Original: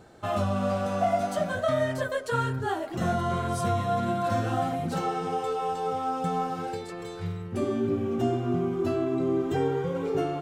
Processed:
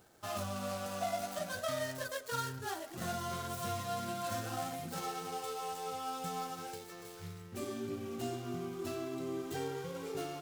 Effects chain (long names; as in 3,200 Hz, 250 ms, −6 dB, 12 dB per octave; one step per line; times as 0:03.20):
running median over 15 samples
first-order pre-emphasis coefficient 0.9
level +6 dB